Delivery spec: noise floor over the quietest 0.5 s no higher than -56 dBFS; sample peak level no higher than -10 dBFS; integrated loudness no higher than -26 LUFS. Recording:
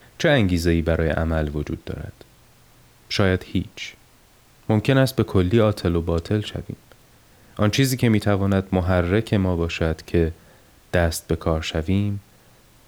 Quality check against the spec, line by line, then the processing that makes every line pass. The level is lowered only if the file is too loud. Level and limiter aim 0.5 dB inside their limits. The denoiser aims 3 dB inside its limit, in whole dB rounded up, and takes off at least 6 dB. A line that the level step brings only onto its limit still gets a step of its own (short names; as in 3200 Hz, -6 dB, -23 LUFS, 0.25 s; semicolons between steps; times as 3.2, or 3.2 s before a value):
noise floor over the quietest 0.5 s -54 dBFS: fail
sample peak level -5.5 dBFS: fail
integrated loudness -21.5 LUFS: fail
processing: gain -5 dB